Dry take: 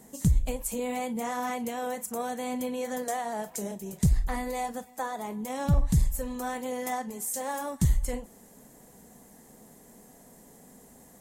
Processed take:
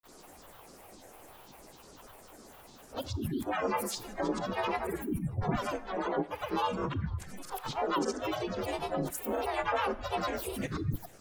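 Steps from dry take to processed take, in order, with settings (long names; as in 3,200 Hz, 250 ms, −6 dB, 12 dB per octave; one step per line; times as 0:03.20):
played backwards from end to start
in parallel at +1 dB: downward compressor, threshold −39 dBFS, peak gain reduction 19.5 dB
on the sum: frequency shifter −190 Hz
bass and treble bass −14 dB, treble −6 dB
echo through a band-pass that steps 272 ms, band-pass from 1,500 Hz, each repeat 0.7 octaves, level −12 dB
granular cloud, pitch spread up and down by 12 semitones
gate on every frequency bin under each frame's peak −30 dB strong
pitch-shifted copies added +3 semitones −7 dB, +5 semitones −8 dB
parametric band 750 Hz +3 dB 0.42 octaves
four-comb reverb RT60 0.64 s, combs from 27 ms, DRR 17.5 dB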